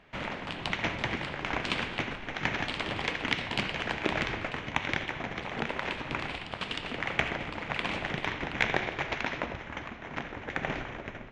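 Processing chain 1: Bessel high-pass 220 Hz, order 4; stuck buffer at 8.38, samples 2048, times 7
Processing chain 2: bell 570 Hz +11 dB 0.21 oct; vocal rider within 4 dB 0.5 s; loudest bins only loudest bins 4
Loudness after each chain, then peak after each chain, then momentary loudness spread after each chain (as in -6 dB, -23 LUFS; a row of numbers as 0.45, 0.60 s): -33.5, -41.0 LUFS; -7.5, -23.0 dBFS; 7, 4 LU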